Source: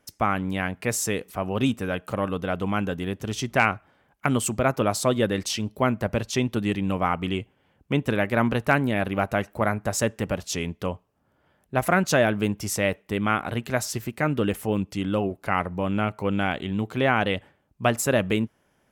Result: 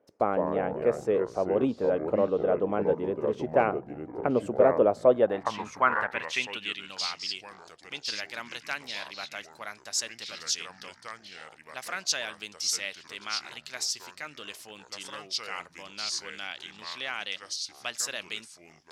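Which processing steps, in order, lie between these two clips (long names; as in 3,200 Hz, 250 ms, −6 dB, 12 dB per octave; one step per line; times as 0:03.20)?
delay with pitch and tempo change per echo 106 ms, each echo −4 semitones, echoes 3, each echo −6 dB
band-pass filter sweep 490 Hz → 4,900 Hz, 0:04.98–0:06.99
level +6 dB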